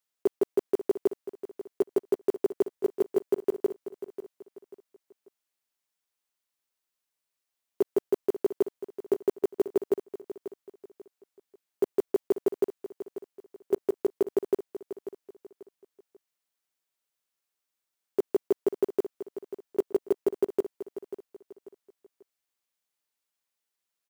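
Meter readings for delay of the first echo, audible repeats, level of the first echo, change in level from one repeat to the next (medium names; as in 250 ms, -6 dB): 540 ms, 3, -13.0 dB, -9.5 dB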